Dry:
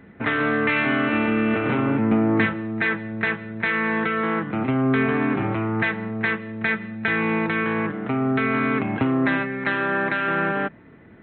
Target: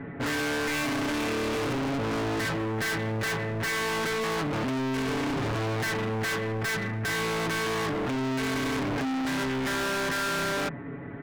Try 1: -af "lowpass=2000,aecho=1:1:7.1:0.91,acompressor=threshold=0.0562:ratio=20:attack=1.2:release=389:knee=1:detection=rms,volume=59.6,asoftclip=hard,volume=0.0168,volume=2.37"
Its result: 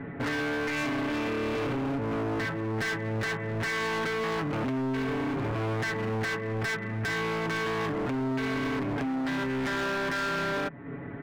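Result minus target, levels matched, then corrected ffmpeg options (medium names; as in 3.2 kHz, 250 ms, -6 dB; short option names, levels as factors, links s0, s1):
compression: peak gain reduction +11.5 dB
-af "lowpass=2000,aecho=1:1:7.1:0.91,acompressor=threshold=0.224:ratio=20:attack=1.2:release=389:knee=1:detection=rms,volume=59.6,asoftclip=hard,volume=0.0168,volume=2.37"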